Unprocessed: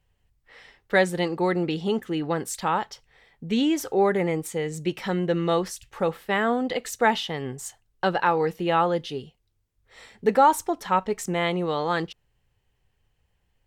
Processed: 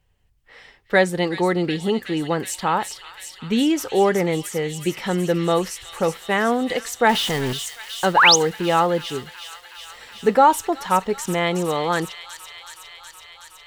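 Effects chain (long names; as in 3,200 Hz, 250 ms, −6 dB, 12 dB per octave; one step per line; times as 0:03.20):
0:07.09–0:07.53: converter with a step at zero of −27 dBFS
delay with a high-pass on its return 371 ms, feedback 79%, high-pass 2,800 Hz, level −6 dB
0:08.16–0:08.36: sound drawn into the spectrogram rise 750–7,200 Hz −16 dBFS
level +3.5 dB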